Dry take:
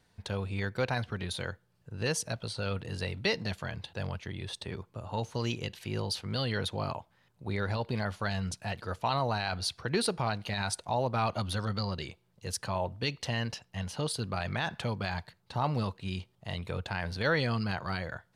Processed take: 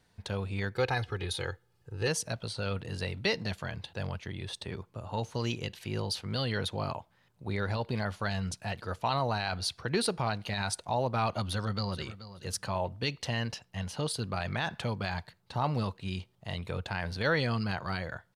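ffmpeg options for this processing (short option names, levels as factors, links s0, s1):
-filter_complex "[0:a]asettb=1/sr,asplit=3[s0][s1][s2];[s0]atrim=end=0.754[s3];[s1]atrim=start=0.75:end=2.08,asetpts=PTS-STARTPTS,afade=t=in:d=0.004:c=qsin,afade=t=out:st=1.326:d=0.004:c=qsin,aecho=1:1:2.4:0.65,atrim=end_sample=58653[s4];[s2]atrim=start=2.076[s5];[s3][s4]acrossfade=d=0.004:c1=hsin:c2=qsin[s6];[s6][s5]acrossfade=d=0.004:c1=qsin:c2=hsin,asplit=2[s7][s8];[s8]afade=t=in:st=11.43:d=0.01,afade=t=out:st=12.02:d=0.01,aecho=0:1:430|860:0.199526|0.0399052[s9];[s7][s9]amix=inputs=2:normalize=0"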